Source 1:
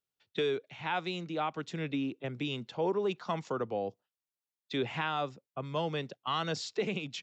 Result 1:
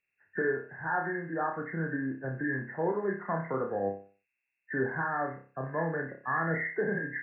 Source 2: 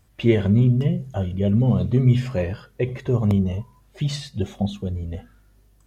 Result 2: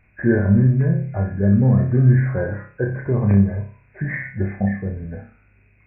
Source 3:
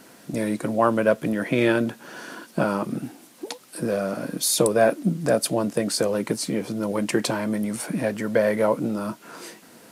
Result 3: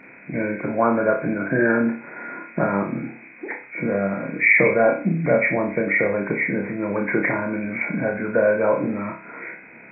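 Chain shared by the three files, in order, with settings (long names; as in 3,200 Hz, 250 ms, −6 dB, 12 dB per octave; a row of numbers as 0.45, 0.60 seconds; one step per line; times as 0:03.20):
hearing-aid frequency compression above 1,400 Hz 4 to 1
flutter between parallel walls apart 5.2 metres, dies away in 0.39 s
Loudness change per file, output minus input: +2.0, +3.0, +2.5 LU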